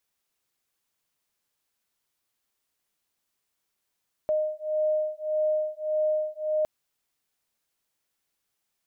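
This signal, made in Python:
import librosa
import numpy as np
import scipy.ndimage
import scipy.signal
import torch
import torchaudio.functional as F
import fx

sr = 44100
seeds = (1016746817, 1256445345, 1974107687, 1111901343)

y = fx.two_tone_beats(sr, length_s=2.36, hz=615.0, beat_hz=1.7, level_db=-27.0)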